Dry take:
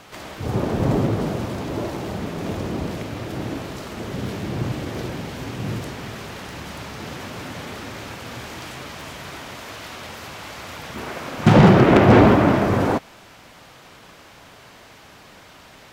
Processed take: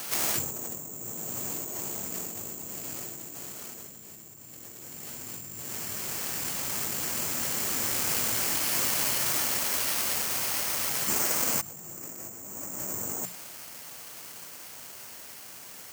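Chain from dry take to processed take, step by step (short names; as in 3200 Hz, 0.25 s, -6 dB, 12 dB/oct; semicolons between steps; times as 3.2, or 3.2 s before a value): Doppler pass-by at 4.27, 23 m/s, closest 14 m; HPF 100 Hz 12 dB/oct; high shelf 2200 Hz +8.5 dB; notches 60/120/180 Hz; negative-ratio compressor -50 dBFS, ratio -1; careless resampling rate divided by 6×, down filtered, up zero stuff; gain +7.5 dB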